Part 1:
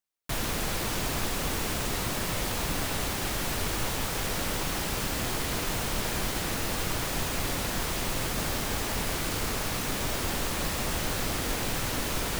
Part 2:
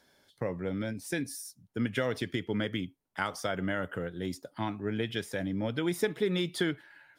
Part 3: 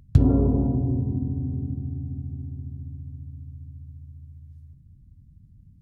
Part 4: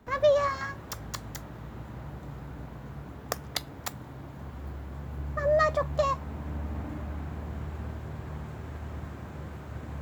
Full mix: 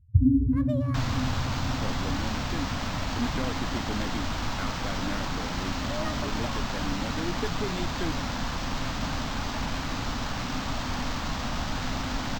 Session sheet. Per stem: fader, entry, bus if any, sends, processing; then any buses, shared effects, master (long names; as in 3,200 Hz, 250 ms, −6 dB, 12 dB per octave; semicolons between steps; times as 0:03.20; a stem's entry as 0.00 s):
+1.5 dB, 0.65 s, no send, phaser with its sweep stopped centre 1,000 Hz, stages 4
−6.0 dB, 1.40 s, no send, no processing
−10.5 dB, 0.00 s, no send, expanding power law on the bin magnitudes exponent 3.8; parametric band 100 Hz +8 dB 1.6 octaves
−13.5 dB, 0.45 s, no send, no processing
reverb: not used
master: parametric band 260 Hz +10 dB 0.42 octaves; linearly interpolated sample-rate reduction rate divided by 4×